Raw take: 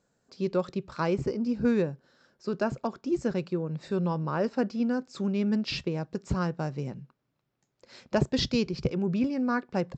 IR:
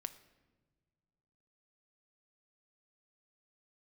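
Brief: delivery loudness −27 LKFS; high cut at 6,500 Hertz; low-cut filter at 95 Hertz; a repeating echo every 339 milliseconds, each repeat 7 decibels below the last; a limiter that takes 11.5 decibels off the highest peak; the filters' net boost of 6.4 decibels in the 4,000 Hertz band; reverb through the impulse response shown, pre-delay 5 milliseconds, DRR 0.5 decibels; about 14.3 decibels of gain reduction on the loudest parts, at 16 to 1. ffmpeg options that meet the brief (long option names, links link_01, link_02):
-filter_complex "[0:a]highpass=95,lowpass=6500,equalizer=frequency=4000:width_type=o:gain=8.5,acompressor=threshold=-34dB:ratio=16,alimiter=level_in=7dB:limit=-24dB:level=0:latency=1,volume=-7dB,aecho=1:1:339|678|1017|1356|1695:0.447|0.201|0.0905|0.0407|0.0183,asplit=2[link_01][link_02];[1:a]atrim=start_sample=2205,adelay=5[link_03];[link_02][link_03]afir=irnorm=-1:irlink=0,volume=2.5dB[link_04];[link_01][link_04]amix=inputs=2:normalize=0,volume=9.5dB"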